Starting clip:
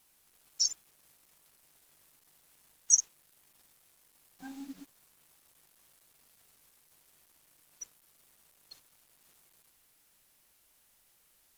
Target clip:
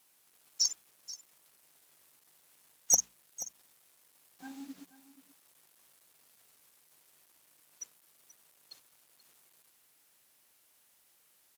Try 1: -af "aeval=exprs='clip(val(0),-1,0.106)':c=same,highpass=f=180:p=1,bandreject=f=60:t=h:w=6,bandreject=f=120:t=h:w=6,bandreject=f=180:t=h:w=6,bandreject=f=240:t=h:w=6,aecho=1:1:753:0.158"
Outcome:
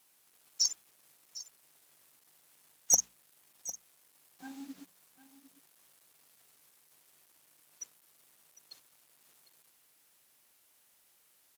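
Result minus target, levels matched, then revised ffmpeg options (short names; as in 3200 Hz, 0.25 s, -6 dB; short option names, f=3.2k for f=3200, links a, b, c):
echo 0.271 s late
-af "aeval=exprs='clip(val(0),-1,0.106)':c=same,highpass=f=180:p=1,bandreject=f=60:t=h:w=6,bandreject=f=120:t=h:w=6,bandreject=f=180:t=h:w=6,bandreject=f=240:t=h:w=6,aecho=1:1:482:0.158"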